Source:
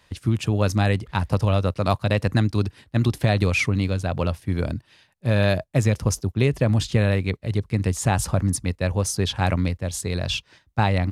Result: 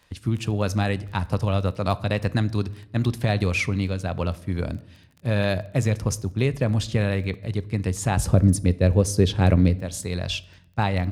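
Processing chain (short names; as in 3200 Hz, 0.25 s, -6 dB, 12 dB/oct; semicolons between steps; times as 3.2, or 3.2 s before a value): 8.17–9.79 resonant low shelf 630 Hz +7 dB, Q 1.5; reverb RT60 0.80 s, pre-delay 4 ms, DRR 16.5 dB; crackle 14/s -34 dBFS; gain -2.5 dB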